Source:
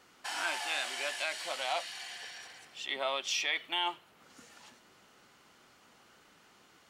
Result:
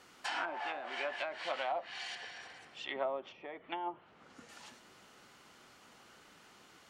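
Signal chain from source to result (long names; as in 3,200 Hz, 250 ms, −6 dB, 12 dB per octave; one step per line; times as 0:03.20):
treble cut that deepens with the level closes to 690 Hz, closed at −29.5 dBFS
0:02.15–0:04.49: high-shelf EQ 3,700 Hz −12 dB
level +2 dB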